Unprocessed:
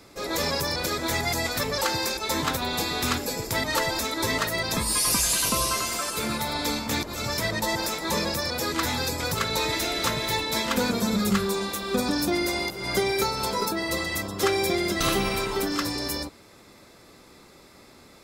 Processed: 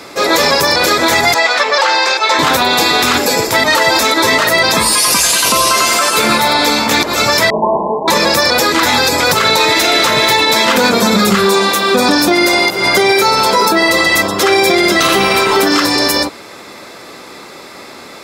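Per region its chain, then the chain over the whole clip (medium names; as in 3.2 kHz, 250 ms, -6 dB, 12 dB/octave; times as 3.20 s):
1.34–2.39 s: high-pass 590 Hz + distance through air 110 m
7.50–8.08 s: comb filter that takes the minimum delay 4.8 ms + brick-wall FIR low-pass 1.1 kHz + doubling 30 ms -8 dB
whole clip: high-pass 500 Hz 6 dB/octave; treble shelf 5.6 kHz -8 dB; loudness maximiser +23 dB; trim -1 dB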